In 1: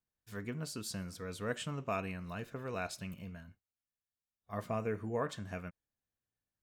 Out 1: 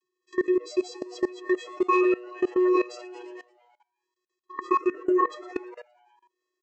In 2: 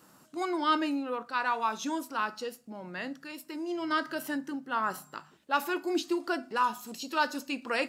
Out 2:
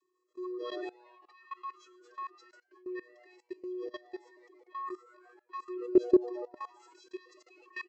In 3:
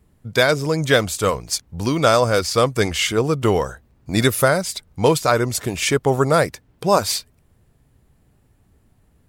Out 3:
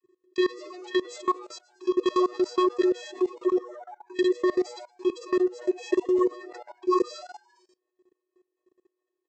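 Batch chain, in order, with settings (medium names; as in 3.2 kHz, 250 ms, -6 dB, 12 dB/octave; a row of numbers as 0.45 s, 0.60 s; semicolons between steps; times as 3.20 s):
vocoder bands 32, square 365 Hz; frequency-shifting echo 114 ms, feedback 59%, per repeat +120 Hz, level -18 dB; level held to a coarse grid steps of 21 dB; peak normalisation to -12 dBFS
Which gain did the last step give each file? +22.0 dB, +4.0 dB, +0.5 dB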